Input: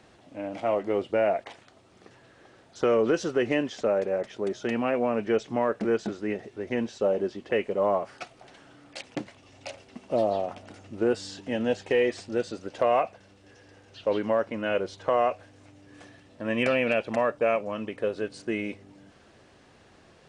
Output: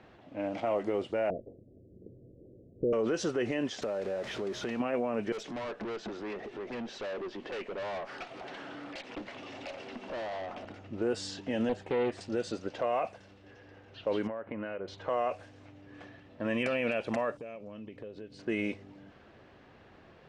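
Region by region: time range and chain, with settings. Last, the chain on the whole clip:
1.3–2.93 steep low-pass 530 Hz 48 dB/oct + tilt -2 dB/oct
3.82–4.8 zero-crossing step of -36 dBFS + compressor 4:1, threshold -32 dBFS
5.32–10.65 HPF 210 Hz + upward compressor, threshold -29 dBFS + tube stage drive 35 dB, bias 0.25
11.69–12.21 bell 5600 Hz -13 dB 2.1 oct + Doppler distortion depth 0.41 ms
14.27–14.88 LPF 2500 Hz 24 dB/oct + compressor 16:1, threshold -33 dBFS
17.37–18.39 bell 1200 Hz -12.5 dB 2.2 oct + compressor 5:1, threshold -41 dBFS
whole clip: low-pass opened by the level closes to 2800 Hz, open at -23.5 dBFS; limiter -22 dBFS

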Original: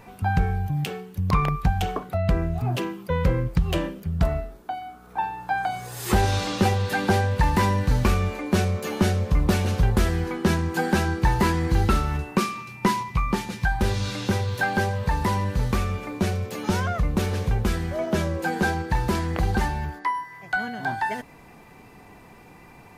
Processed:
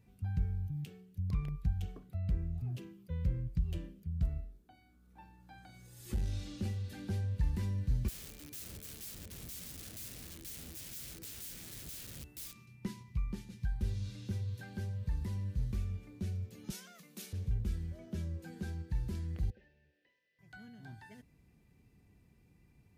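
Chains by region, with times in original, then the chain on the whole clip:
4.71–7.08 comb 3.5 ms, depth 41% + flutter echo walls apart 7.5 m, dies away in 0.26 s + core saturation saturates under 160 Hz
8.08–12.66 wrapped overs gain 25.5 dB + high shelf 6500 Hz +9.5 dB
16.7–17.33 steep high-pass 170 Hz 48 dB/oct + tilt +4 dB/oct
19.5–20.39 delta modulation 32 kbps, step -35.5 dBFS + vowel filter e
whole clip: HPF 50 Hz; passive tone stack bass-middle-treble 10-0-1

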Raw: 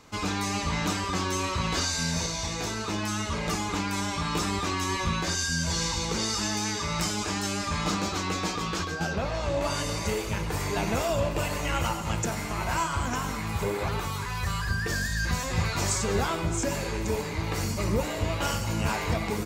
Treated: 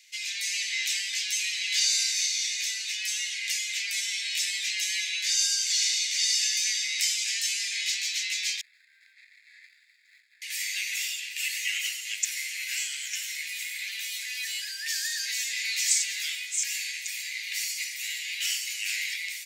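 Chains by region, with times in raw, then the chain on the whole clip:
8.61–10.42 median filter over 41 samples + running mean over 15 samples
whole clip: steep high-pass 1900 Hz 72 dB/oct; AGC gain up to 3 dB; gain +3 dB

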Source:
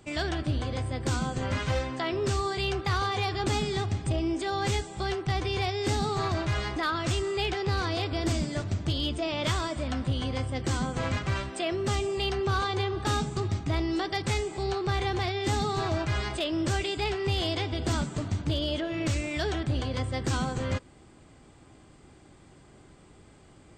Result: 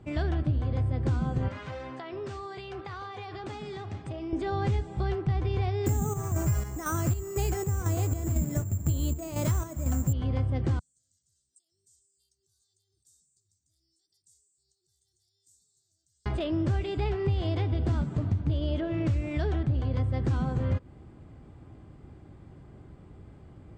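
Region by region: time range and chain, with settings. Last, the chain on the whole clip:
1.48–4.33 HPF 650 Hz 6 dB/oct + compressor 4:1, threshold -34 dBFS
5.86–10.13 tone controls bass +2 dB, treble -11 dB + chopper 2 Hz, depth 60%, duty 55% + careless resampling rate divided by 6×, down filtered, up zero stuff
10.79–16.26 inverse Chebyshev high-pass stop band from 2600 Hz, stop band 60 dB + upward compressor, threshold -56 dBFS
whole clip: LPF 1200 Hz 6 dB/oct; bell 84 Hz +9 dB 2.5 oct; compressor 4:1, threshold -24 dBFS

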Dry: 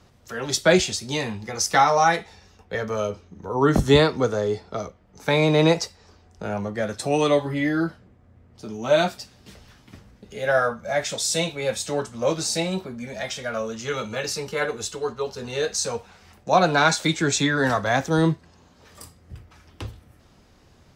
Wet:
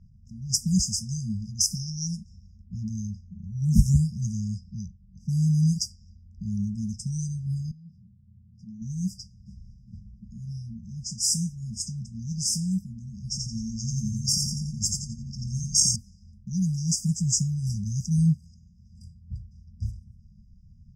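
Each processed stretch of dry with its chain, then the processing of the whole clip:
7.71–8.82 HPF 110 Hz + compressor 12:1, threshold -37 dBFS
13.23–15.96 bell 4000 Hz +4 dB 0.83 oct + comb 1.1 ms, depth 97% + feedback echo 87 ms, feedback 44%, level -4 dB
whole clip: FFT band-reject 230–4800 Hz; low shelf 65 Hz +8.5 dB; low-pass opened by the level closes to 1900 Hz, open at -24 dBFS; gain +1.5 dB

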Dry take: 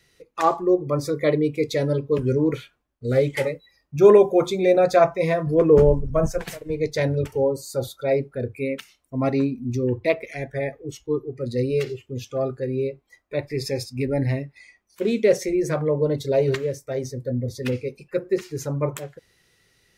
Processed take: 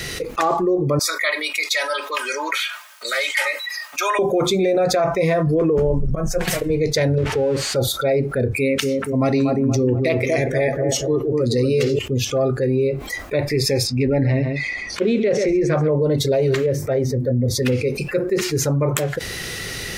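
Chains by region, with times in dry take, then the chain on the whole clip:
0.99–4.19 HPF 1000 Hz 24 dB/oct + comb 3.2 ms, depth 68%
6–6.59 auto swell 0.439 s + comb 5.5 ms, depth 47%
7.18–7.76 switching spikes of -19.5 dBFS + LPF 1900 Hz + compressor 2.5:1, threshold -25 dBFS
8.51–11.99 HPF 47 Hz + bell 6000 Hz +6.5 dB 1.5 oct + analogue delay 0.237 s, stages 2048, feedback 36%, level -6 dB
13.87–15.92 LPF 4100 Hz + echo 0.134 s -13.5 dB
16.66–17.45 bell 8100 Hz -12.5 dB 2.4 oct + upward compressor, threshold -38 dBFS + notches 50/100/150/200/250/300/350 Hz
whole clip: notch 960 Hz, Q 14; maximiser +13.5 dB; fast leveller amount 70%; gain -11 dB

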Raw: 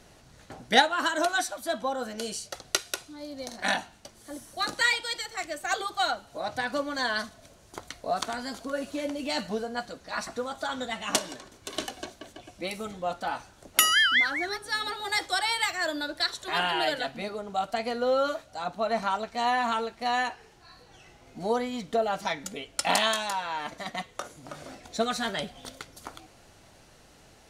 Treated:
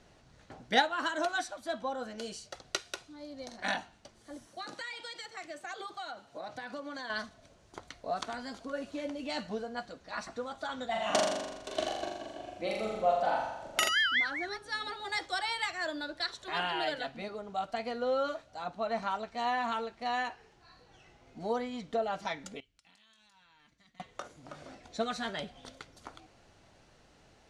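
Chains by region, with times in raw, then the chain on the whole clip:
4.47–7.1 HPF 130 Hz + compressor 8:1, threshold -31 dBFS
10.89–13.89 bell 660 Hz +10.5 dB 0.56 oct + flutter echo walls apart 7.1 m, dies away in 0.99 s
22.6–24 passive tone stack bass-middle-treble 6-0-2 + compressor 12:1, threshold -52 dBFS
whole clip: LPF 7900 Hz 12 dB/oct; high shelf 5500 Hz -5 dB; gain -5.5 dB

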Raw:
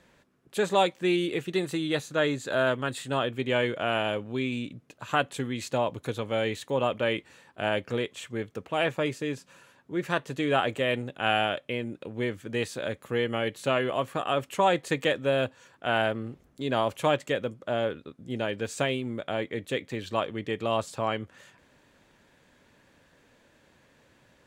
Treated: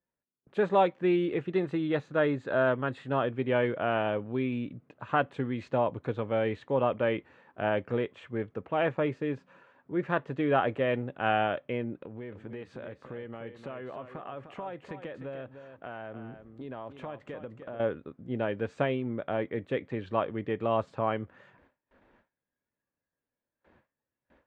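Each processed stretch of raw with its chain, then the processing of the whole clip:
11.97–17.8 compressor 4:1, threshold -38 dBFS + echo 0.301 s -9.5 dB
whole clip: gate with hold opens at -50 dBFS; spectral noise reduction 9 dB; LPF 1700 Hz 12 dB/oct

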